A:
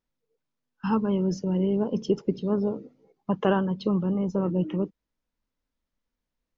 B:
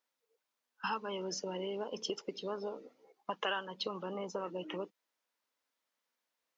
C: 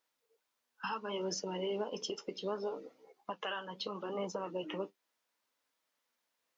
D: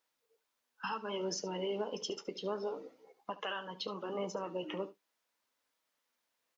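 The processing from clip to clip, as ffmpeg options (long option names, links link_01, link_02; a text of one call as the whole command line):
ffmpeg -i in.wav -filter_complex "[0:a]highpass=620,acrossover=split=1900[link_01][link_02];[link_01]acompressor=threshold=-40dB:ratio=6[link_03];[link_03][link_02]amix=inputs=2:normalize=0,volume=4dB" out.wav
ffmpeg -i in.wav -af "alimiter=level_in=5.5dB:limit=-24dB:level=0:latency=1:release=357,volume=-5.5dB,flanger=delay=6.2:depth=5.9:regen=-50:speed=0.69:shape=sinusoidal,volume=7dB" out.wav
ffmpeg -i in.wav -af "aecho=1:1:72:0.15" out.wav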